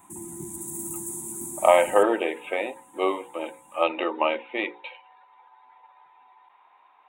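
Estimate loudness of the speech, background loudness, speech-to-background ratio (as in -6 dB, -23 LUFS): -25.0 LUFS, -34.0 LUFS, 9.0 dB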